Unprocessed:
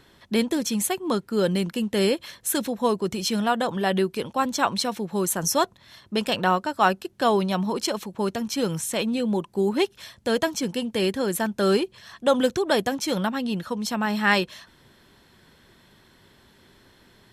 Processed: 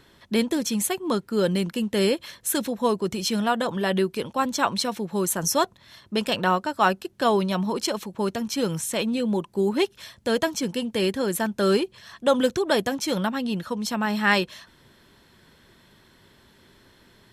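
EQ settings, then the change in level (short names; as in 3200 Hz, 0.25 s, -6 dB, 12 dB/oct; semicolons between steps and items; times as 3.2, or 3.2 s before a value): notch 760 Hz, Q 18; 0.0 dB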